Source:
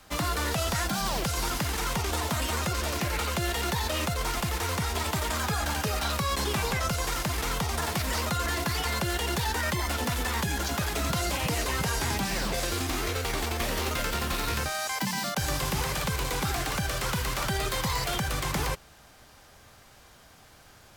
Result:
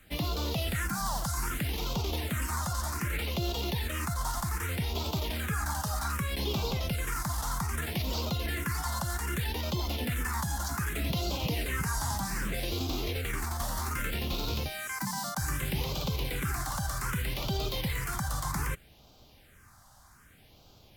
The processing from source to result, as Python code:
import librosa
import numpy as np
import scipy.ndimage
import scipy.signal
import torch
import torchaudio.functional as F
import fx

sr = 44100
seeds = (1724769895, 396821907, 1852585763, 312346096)

y = fx.phaser_stages(x, sr, stages=4, low_hz=400.0, high_hz=1800.0, hz=0.64, feedback_pct=20)
y = y * 10.0 ** (-1.5 / 20.0)